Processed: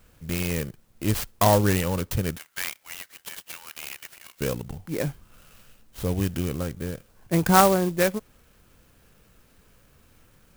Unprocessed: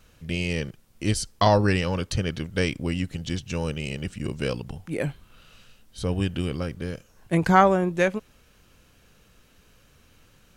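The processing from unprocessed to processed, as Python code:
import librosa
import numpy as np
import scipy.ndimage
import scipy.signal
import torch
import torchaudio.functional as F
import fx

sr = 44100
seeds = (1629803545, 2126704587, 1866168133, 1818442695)

y = fx.highpass(x, sr, hz=1300.0, slope=24, at=(2.37, 4.41))
y = fx.clock_jitter(y, sr, seeds[0], jitter_ms=0.066)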